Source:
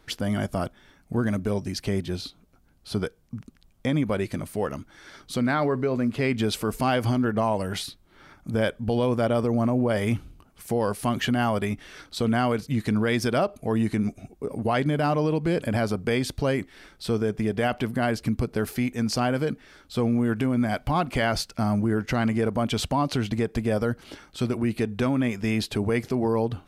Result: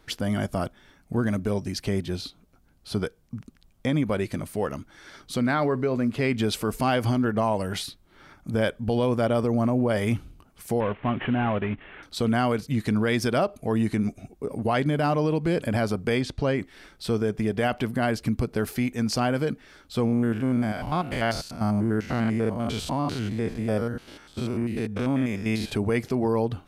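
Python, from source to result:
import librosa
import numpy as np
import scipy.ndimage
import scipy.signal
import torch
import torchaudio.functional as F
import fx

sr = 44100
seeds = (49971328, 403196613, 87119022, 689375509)

y = fx.cvsd(x, sr, bps=16000, at=(10.8, 12.03))
y = fx.air_absorb(y, sr, metres=76.0, at=(16.21, 16.61))
y = fx.spec_steps(y, sr, hold_ms=100, at=(20.04, 25.7), fade=0.02)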